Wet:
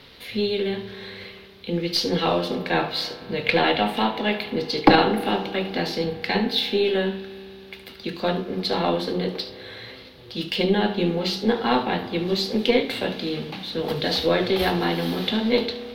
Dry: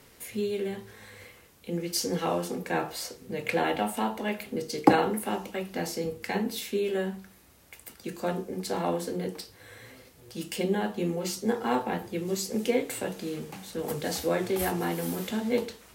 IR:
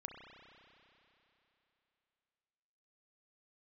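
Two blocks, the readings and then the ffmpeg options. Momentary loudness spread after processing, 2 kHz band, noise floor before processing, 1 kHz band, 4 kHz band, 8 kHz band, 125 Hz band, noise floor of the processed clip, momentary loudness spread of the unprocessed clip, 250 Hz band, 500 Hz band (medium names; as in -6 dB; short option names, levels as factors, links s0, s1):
15 LU, +8.5 dB, -56 dBFS, +6.5 dB, +13.0 dB, -7.0 dB, +6.5 dB, -44 dBFS, 14 LU, +6.0 dB, +6.5 dB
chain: -filter_complex "[0:a]equalizer=f=3700:t=o:w=0.79:g=3.5,asplit=2[s0][s1];[1:a]atrim=start_sample=2205,adelay=72[s2];[s1][s2]afir=irnorm=-1:irlink=0,volume=0.398[s3];[s0][s3]amix=inputs=2:normalize=0,aeval=exprs='0.75*(cos(1*acos(clip(val(0)/0.75,-1,1)))-cos(1*PI/2))+0.0841*(cos(4*acos(clip(val(0)/0.75,-1,1)))-cos(4*PI/2))':c=same,apsyclip=2.37,highshelf=f=5500:t=q:w=3:g=-12,volume=0.841"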